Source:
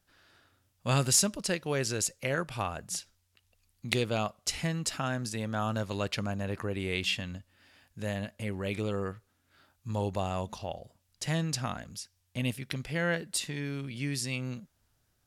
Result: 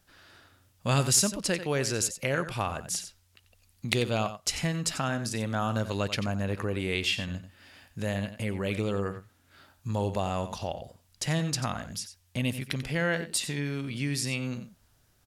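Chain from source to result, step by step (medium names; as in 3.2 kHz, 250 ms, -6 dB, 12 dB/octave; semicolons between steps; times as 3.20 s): delay 90 ms -12.5 dB; in parallel at +2 dB: compression, threshold -41 dBFS, peak gain reduction 19 dB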